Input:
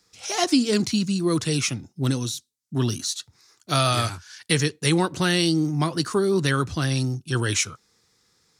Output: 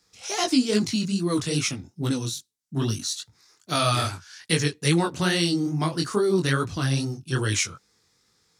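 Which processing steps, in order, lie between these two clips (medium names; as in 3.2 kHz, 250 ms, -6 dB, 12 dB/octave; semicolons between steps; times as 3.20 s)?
chorus 2.4 Hz, delay 18 ms, depth 5.7 ms; trim +1.5 dB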